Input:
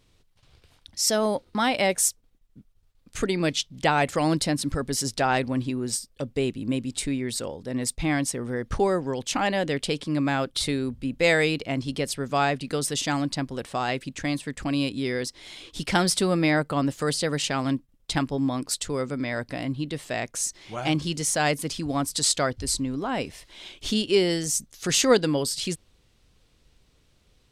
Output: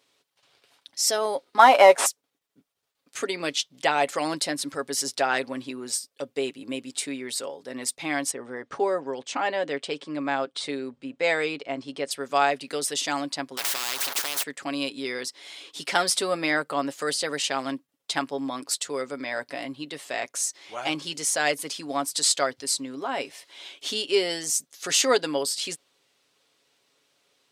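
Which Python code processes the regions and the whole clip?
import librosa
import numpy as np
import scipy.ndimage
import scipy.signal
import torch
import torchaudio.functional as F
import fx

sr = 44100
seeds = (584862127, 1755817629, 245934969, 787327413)

y = fx.chain(x, sr, fx.cvsd(bps=64000),
    fx.peak_eq(hz=850.0, db=14.0, octaves=2.1), at=(1.59, 2.06))
y = fx.chain(y, sr, fx.steep_lowpass(hz=9400.0, slope=96),
    fx.high_shelf(hz=2900.0, db=-9.0), at=(8.31, 12.11))
y = fx.chain(y, sr, fx.zero_step(step_db=-37.5),
    fx.peak_eq(hz=7700.0, db=-7.5, octaves=1.3),
    fx.spectral_comp(ratio=10.0), at=(13.57, 14.43))
y = scipy.signal.sosfilt(scipy.signal.butter(2, 440.0, 'highpass', fs=sr, output='sos'), y)
y = y + 0.42 * np.pad(y, (int(7.2 * sr / 1000.0), 0))[:len(y)]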